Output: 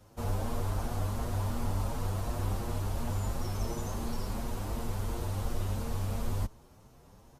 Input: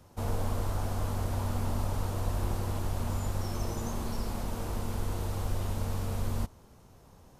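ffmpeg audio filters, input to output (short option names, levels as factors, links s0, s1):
-filter_complex "[0:a]asplit=2[s0][s1];[s1]adelay=7.4,afreqshift=2.8[s2];[s0][s2]amix=inputs=2:normalize=1,volume=1.26"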